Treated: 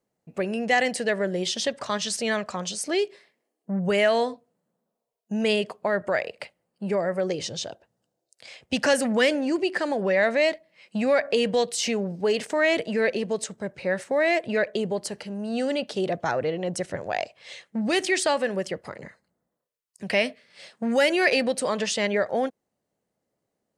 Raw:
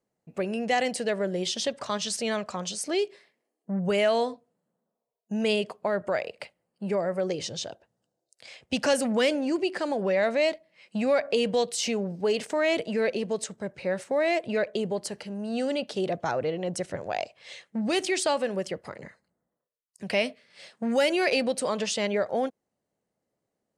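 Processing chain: dynamic EQ 1800 Hz, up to +7 dB, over -47 dBFS, Q 3.7; gain +2 dB

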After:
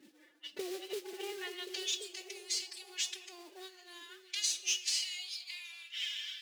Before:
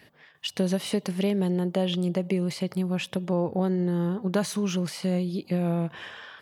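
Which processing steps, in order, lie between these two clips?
self-modulated delay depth 0.053 ms; in parallel at -2 dB: limiter -24 dBFS, peak gain reduction 11.5 dB; on the sum: band-pass sweep 290 Hz -> 6900 Hz, 0.88–1.82; on a send at -7 dB: reverb RT60 1.0 s, pre-delay 7 ms; on the sum: formant-preserving pitch shift +12 st; compressor 6:1, threshold -39 dBFS, peak gain reduction 15 dB; high-pass sweep 61 Hz -> 2400 Hz, 2.87–4.35; delay with a stepping band-pass 0.538 s, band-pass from 290 Hz, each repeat 0.7 oct, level -7 dB; modulation noise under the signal 15 dB; weighting filter D

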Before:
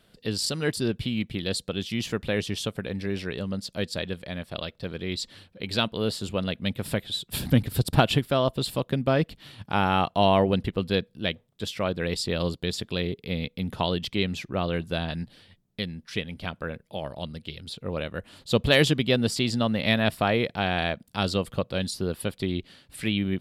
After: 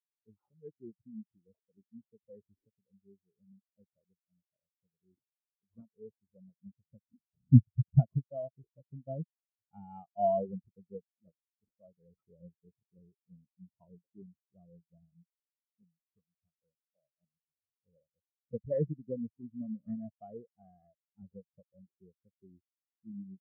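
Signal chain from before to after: treble ducked by the level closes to 2400 Hz, closed at -17.5 dBFS; sample-rate reducer 3700 Hz, jitter 0%; spectral expander 4:1

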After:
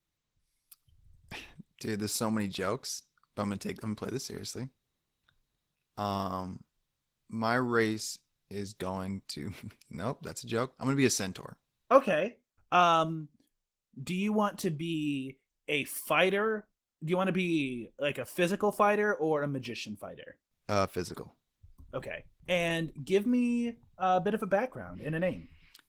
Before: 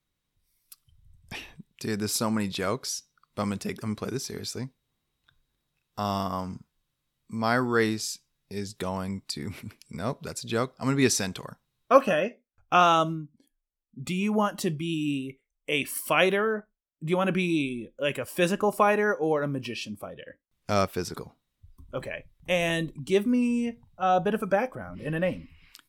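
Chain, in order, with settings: gain -3.5 dB; Opus 16 kbps 48000 Hz

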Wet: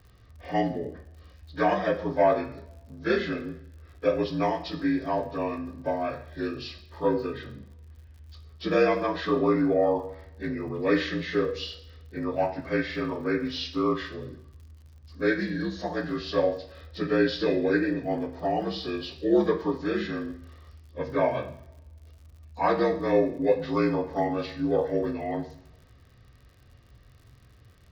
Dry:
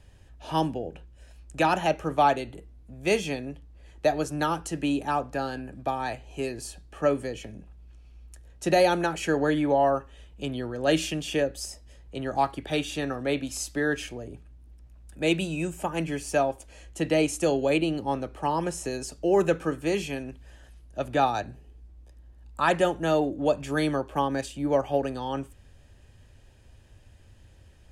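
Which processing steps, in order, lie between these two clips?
inharmonic rescaling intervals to 81%; two-slope reverb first 0.55 s, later 1.8 s, from -24 dB, DRR 4.5 dB; crackle 74/s -47 dBFS

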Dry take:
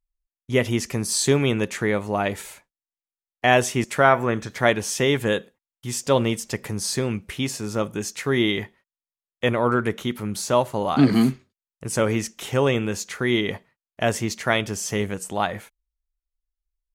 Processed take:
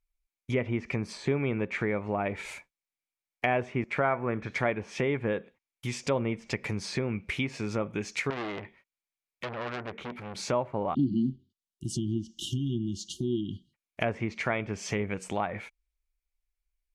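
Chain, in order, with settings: 10.94–13.74 spectral delete 370–2800 Hz; treble ducked by the level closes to 1500 Hz, closed at -20 dBFS; bell 2300 Hz +12 dB 0.26 oct; compressor 2:1, threshold -31 dBFS, peak gain reduction 11 dB; 8.3–10.41 core saturation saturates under 4000 Hz

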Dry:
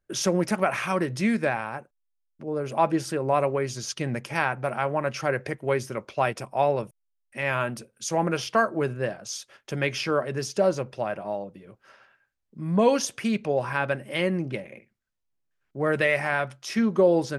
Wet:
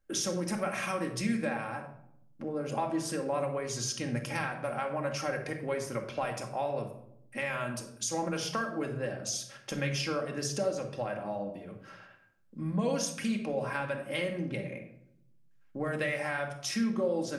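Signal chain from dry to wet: dynamic EQ 8000 Hz, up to +7 dB, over -48 dBFS, Q 0.73; compressor 3:1, threshold -35 dBFS, peak gain reduction 15 dB; reverb RT60 0.75 s, pre-delay 4 ms, DRR 2.5 dB

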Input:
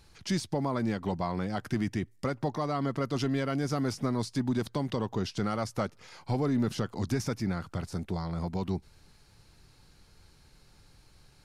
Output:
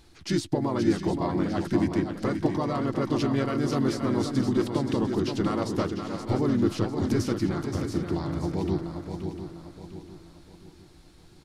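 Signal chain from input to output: bell 340 Hz +14 dB 0.23 oct; harmoniser -3 st -4 dB; swung echo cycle 0.7 s, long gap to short 3:1, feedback 38%, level -7 dB

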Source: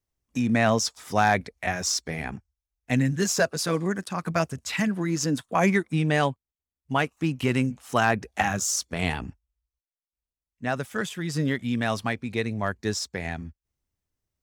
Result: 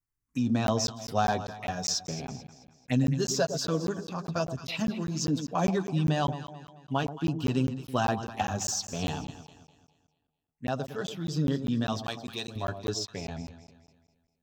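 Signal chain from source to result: envelope phaser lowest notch 590 Hz, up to 2100 Hz, full sweep at -26.5 dBFS; dynamic EQ 2600 Hz, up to +5 dB, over -44 dBFS, Q 0.92; flange 0.54 Hz, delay 6.7 ms, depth 1.7 ms, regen -28%; 12.04–12.56 RIAA curve recording; on a send: echo with dull and thin repeats by turns 0.109 s, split 920 Hz, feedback 63%, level -9 dB; on the sum: crackling interface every 0.20 s, samples 512, zero, from 0.67

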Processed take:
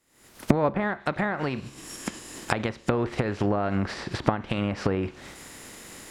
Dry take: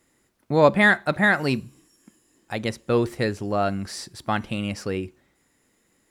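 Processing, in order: spectral contrast lowered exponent 0.66; recorder AGC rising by 79 dB/s; treble ducked by the level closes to 1200 Hz, closed at -12.5 dBFS; gain -7.5 dB

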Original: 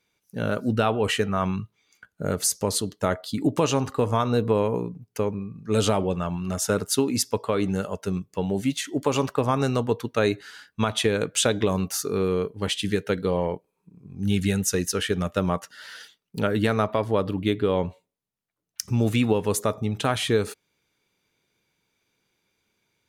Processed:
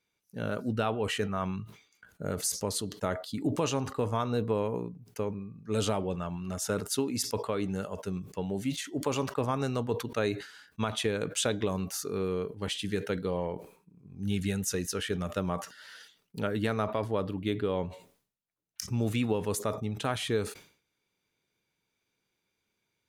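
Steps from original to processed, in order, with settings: sustainer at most 120 dB/s; gain -7.5 dB

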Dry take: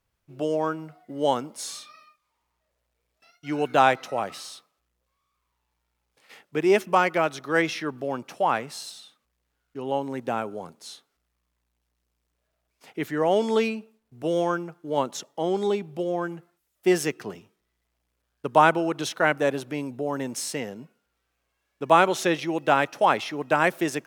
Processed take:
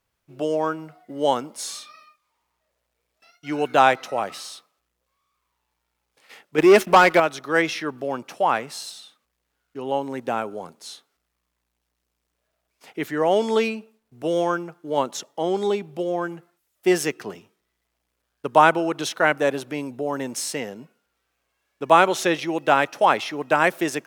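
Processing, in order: 6.58–7.2 sample leveller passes 2; low shelf 170 Hz -7 dB; gain +3 dB

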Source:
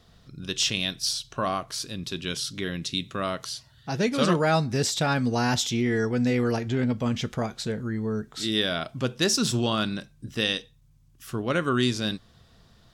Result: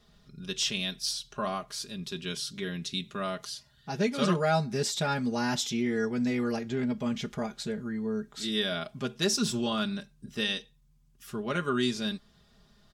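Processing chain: comb 4.9 ms, depth 73%; gain -6.5 dB

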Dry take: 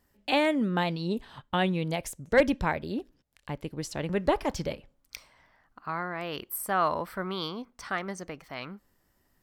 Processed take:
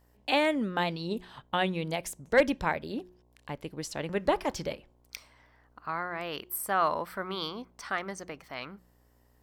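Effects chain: buzz 60 Hz, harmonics 18, -59 dBFS -7 dB/oct; low shelf 230 Hz -7 dB; de-hum 180.5 Hz, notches 2

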